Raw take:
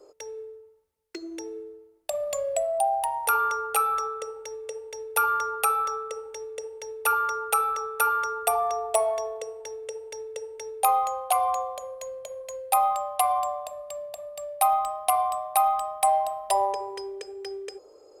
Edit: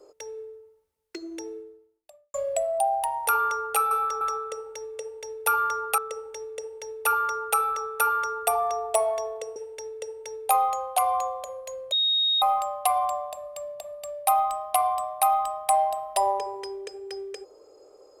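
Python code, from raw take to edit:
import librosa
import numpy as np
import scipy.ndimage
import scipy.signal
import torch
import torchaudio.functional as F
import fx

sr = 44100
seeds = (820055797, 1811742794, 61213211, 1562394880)

y = fx.edit(x, sr, fx.fade_out_span(start_s=1.51, length_s=0.83, curve='qua'),
    fx.move(start_s=5.68, length_s=0.3, to_s=3.91),
    fx.cut(start_s=9.56, length_s=0.34),
    fx.bleep(start_s=12.26, length_s=0.5, hz=3740.0, db=-20.0), tone=tone)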